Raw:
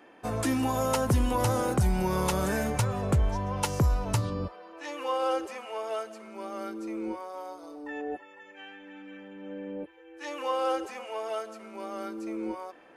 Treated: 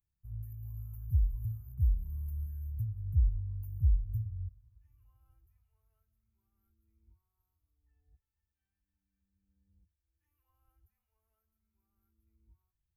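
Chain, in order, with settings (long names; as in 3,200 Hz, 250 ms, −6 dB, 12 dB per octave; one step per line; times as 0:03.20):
inverse Chebyshev band-stop filter 240–8,800 Hz, stop band 50 dB
coupled-rooms reverb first 0.32 s, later 4.6 s, from −18 dB, DRR 19 dB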